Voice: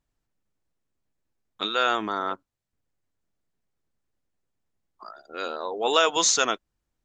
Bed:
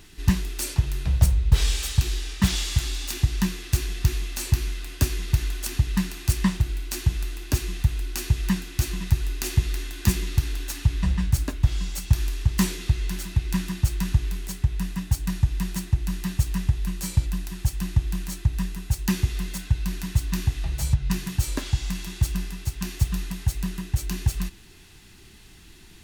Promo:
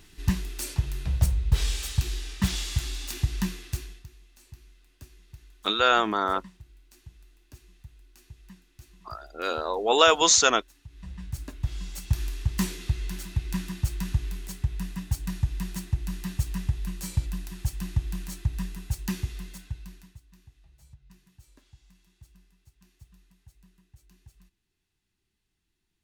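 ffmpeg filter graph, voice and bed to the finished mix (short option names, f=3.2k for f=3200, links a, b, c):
-filter_complex "[0:a]adelay=4050,volume=2.5dB[a];[1:a]volume=16.5dB,afade=t=out:st=3.49:d=0.57:silence=0.0841395,afade=t=in:st=10.88:d=1.33:silence=0.0891251,afade=t=out:st=18.82:d=1.38:silence=0.0530884[b];[a][b]amix=inputs=2:normalize=0"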